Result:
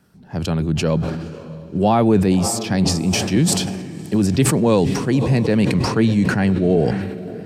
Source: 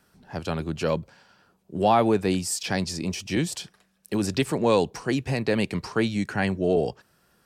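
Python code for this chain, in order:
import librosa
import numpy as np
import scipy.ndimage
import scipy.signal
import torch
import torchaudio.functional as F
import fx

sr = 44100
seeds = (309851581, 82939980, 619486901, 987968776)

y = fx.peak_eq(x, sr, hz=150.0, db=10.5, octaves=2.6)
y = fx.echo_diffused(y, sr, ms=554, feedback_pct=47, wet_db=-15)
y = fx.sustainer(y, sr, db_per_s=40.0)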